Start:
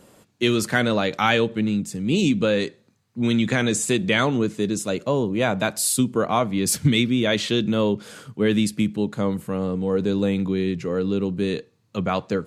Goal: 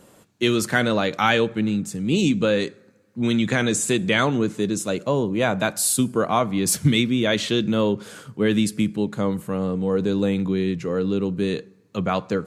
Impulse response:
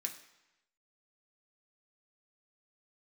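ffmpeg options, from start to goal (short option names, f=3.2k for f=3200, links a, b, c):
-filter_complex "[0:a]asplit=2[a][b];[b]asuperstop=centerf=3300:order=8:qfactor=1.6[c];[1:a]atrim=start_sample=2205,asetrate=29106,aresample=44100[d];[c][d]afir=irnorm=-1:irlink=0,volume=-17.5dB[e];[a][e]amix=inputs=2:normalize=0"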